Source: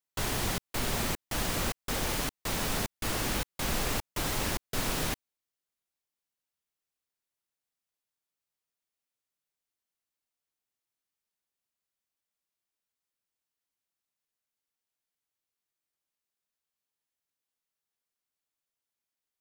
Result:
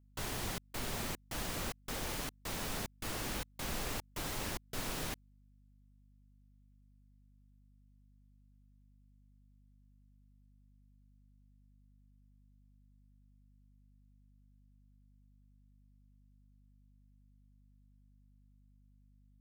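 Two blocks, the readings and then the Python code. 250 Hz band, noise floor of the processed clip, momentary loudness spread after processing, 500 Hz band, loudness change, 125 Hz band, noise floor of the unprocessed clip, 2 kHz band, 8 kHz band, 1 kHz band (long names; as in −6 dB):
−8.0 dB, −65 dBFS, 2 LU, −8.0 dB, −8.0 dB, −8.0 dB, below −85 dBFS, −8.0 dB, −8.0 dB, −8.0 dB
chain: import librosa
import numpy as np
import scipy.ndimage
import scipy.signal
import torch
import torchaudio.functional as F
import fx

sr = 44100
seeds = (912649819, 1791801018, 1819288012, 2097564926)

y = fx.add_hum(x, sr, base_hz=50, snr_db=19)
y = y * 10.0 ** (-8.0 / 20.0)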